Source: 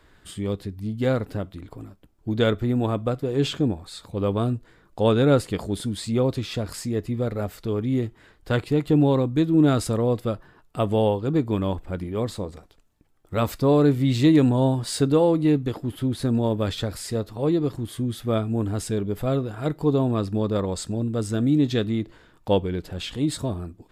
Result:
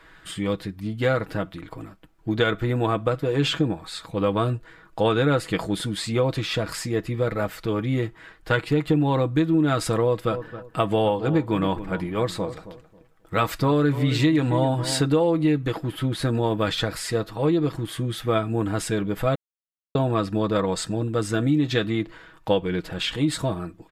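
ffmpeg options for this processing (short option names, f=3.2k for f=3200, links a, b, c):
-filter_complex "[0:a]asplit=3[a][b][c];[a]afade=t=out:st=10.3:d=0.02[d];[b]asplit=2[e][f];[f]adelay=270,lowpass=f=1.2k:p=1,volume=-13.5dB,asplit=2[g][h];[h]adelay=270,lowpass=f=1.2k:p=1,volume=0.25,asplit=2[i][j];[j]adelay=270,lowpass=f=1.2k:p=1,volume=0.25[k];[e][g][i][k]amix=inputs=4:normalize=0,afade=t=in:st=10.3:d=0.02,afade=t=out:st=15.02:d=0.02[l];[c]afade=t=in:st=15.02:d=0.02[m];[d][l][m]amix=inputs=3:normalize=0,asplit=3[n][o][p];[n]atrim=end=19.35,asetpts=PTS-STARTPTS,afade=t=out:st=19.346:d=0.004:c=hsin[q];[o]atrim=start=19.35:end=19.95,asetpts=PTS-STARTPTS,volume=0[r];[p]atrim=start=19.95,asetpts=PTS-STARTPTS,afade=t=in:d=0.004:c=hsin[s];[q][r][s]concat=n=3:v=0:a=1,equalizer=f=1.7k:t=o:w=2.2:g=9,aecho=1:1:6.2:0.55,acompressor=threshold=-17dB:ratio=5"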